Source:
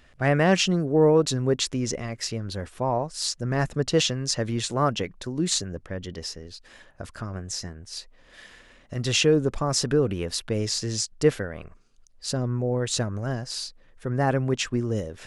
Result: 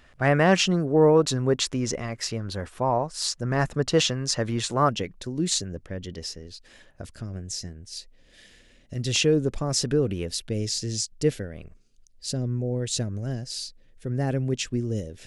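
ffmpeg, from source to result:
-af "asetnsamples=n=441:p=0,asendcmd='4.89 equalizer g -6.5;7.05 equalizer g -15;9.16 equalizer g -7.5;10.27 equalizer g -15',equalizer=f=1100:t=o:w=1.4:g=3"

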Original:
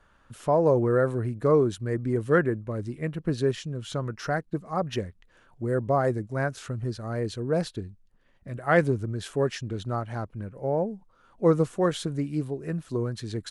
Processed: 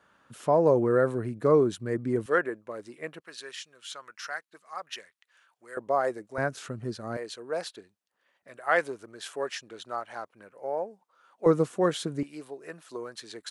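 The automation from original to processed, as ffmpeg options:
-af "asetnsamples=n=441:p=0,asendcmd='2.26 highpass f 500;3.2 highpass f 1400;5.77 highpass f 490;6.38 highpass f 180;7.17 highpass f 630;11.46 highpass f 190;12.23 highpass f 600',highpass=160"

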